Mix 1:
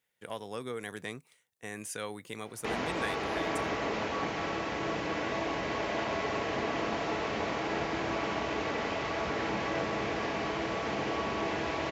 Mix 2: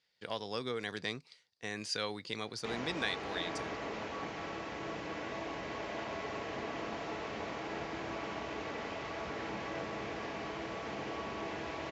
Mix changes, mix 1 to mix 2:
speech: add low-pass with resonance 4,700 Hz, resonance Q 7.5
background −7.5 dB

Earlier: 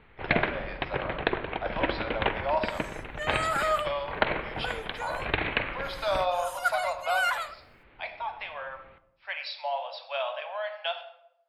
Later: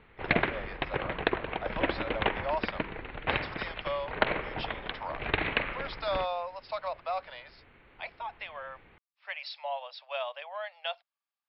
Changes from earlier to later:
second sound: muted
reverb: off

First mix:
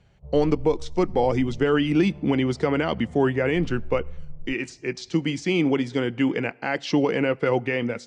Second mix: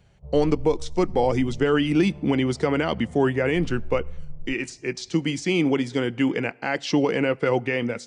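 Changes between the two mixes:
background: send on
master: remove high-frequency loss of the air 59 metres

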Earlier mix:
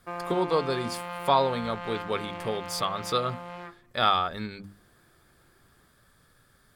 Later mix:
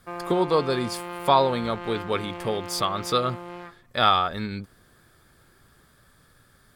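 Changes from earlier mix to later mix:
speech +3.5 dB
master: remove mains-hum notches 50/100/150/200/250/300/350 Hz

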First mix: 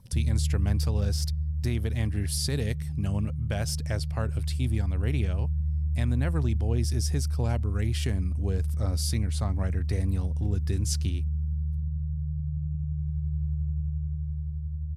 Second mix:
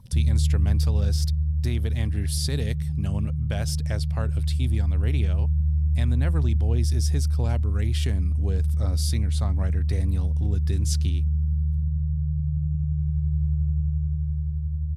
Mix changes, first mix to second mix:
background +5.5 dB
master: add parametric band 3,600 Hz +4.5 dB 0.36 octaves

